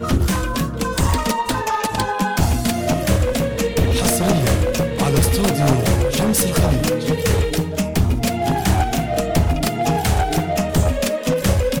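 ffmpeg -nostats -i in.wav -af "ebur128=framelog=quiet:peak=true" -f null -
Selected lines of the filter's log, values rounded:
Integrated loudness:
  I:         -18.7 LUFS
  Threshold: -28.7 LUFS
Loudness range:
  LRA:         2.2 LU
  Threshold: -38.5 LUFS
  LRA low:   -19.6 LUFS
  LRA high:  -17.3 LUFS
True peak:
  Peak:       -1.1 dBFS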